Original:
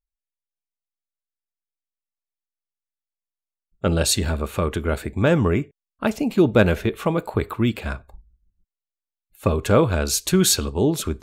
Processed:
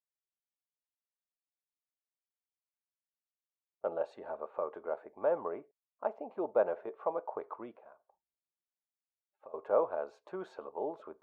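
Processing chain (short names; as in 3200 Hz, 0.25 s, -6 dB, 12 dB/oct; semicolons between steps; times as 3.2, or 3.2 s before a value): 7.75–9.54 compressor 2.5:1, threshold -44 dBFS, peak gain reduction 19 dB; Butterworth band-pass 730 Hz, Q 1.4; gain -7 dB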